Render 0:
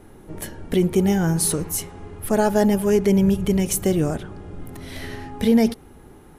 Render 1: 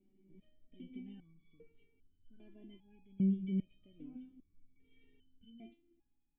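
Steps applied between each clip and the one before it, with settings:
formant resonators in series i
step-sequenced resonator 2.5 Hz 190–1,500 Hz
level −2 dB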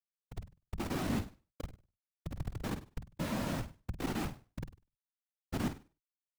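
comparator with hysteresis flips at −52.5 dBFS
flutter between parallel walls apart 8.5 metres, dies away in 0.32 s
random phases in short frames
level +9.5 dB

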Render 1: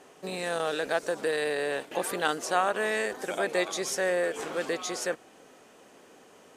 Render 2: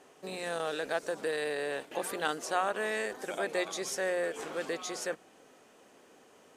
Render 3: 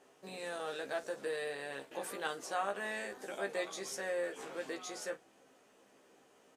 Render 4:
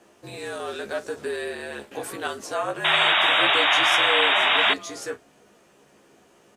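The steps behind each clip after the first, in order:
mains-hum notches 60/120/180 Hz; level −4.5 dB
ambience of single reflections 15 ms −4 dB, 51 ms −16.5 dB; level −7.5 dB
sound drawn into the spectrogram noise, 0:02.84–0:04.74, 630–3,900 Hz −28 dBFS; frequency shifter −58 Hz; level +8.5 dB

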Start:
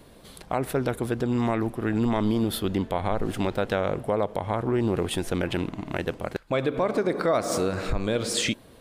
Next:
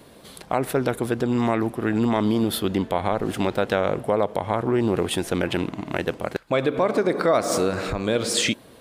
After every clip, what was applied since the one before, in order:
high-pass filter 130 Hz 6 dB per octave
level +4 dB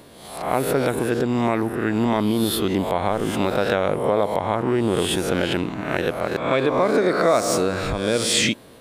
peak hold with a rise ahead of every peak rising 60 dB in 0.68 s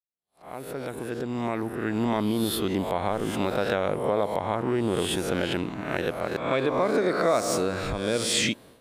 fade in at the beginning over 2.09 s
downward expander −40 dBFS
level −5 dB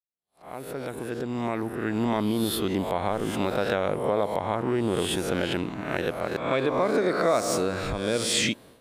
no processing that can be heard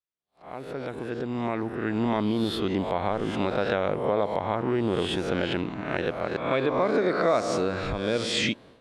low-pass filter 4,700 Hz 12 dB per octave

